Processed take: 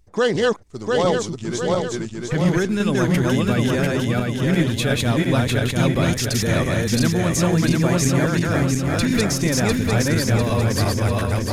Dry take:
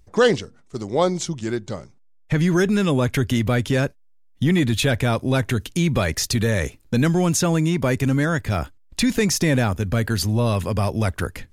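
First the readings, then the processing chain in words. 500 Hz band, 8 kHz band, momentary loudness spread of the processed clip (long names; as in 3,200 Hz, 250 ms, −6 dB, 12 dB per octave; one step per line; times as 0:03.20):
+1.5 dB, +1.5 dB, 4 LU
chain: feedback delay that plays each chunk backwards 350 ms, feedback 71%, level 0 dB
level −3 dB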